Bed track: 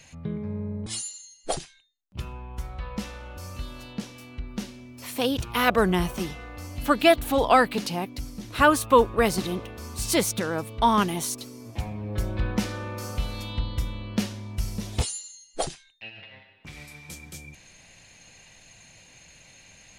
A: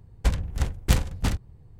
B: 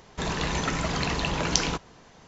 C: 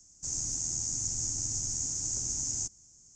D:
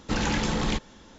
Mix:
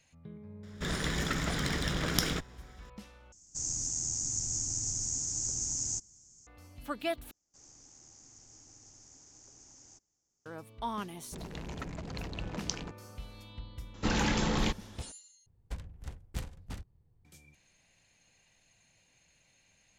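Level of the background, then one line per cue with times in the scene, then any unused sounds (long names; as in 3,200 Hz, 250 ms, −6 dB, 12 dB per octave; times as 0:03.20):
bed track −16 dB
0:00.63: mix in B −3.5 dB + lower of the sound and its delayed copy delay 0.57 ms
0:03.32: overwrite with C −1 dB
0:07.31: overwrite with C −9.5 dB + three-way crossover with the lows and the highs turned down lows −14 dB, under 320 Hz, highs −22 dB, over 4,100 Hz
0:11.14: mix in B −11.5 dB + adaptive Wiener filter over 41 samples
0:13.94: mix in D −3 dB
0:15.46: overwrite with A −17.5 dB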